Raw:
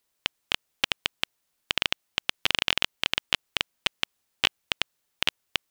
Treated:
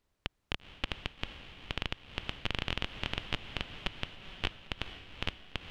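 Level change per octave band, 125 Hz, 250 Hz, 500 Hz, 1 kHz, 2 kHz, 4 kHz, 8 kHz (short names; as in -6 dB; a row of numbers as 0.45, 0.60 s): +5.0, -0.5, -4.5, -7.5, -10.5, -12.5, -18.0 dB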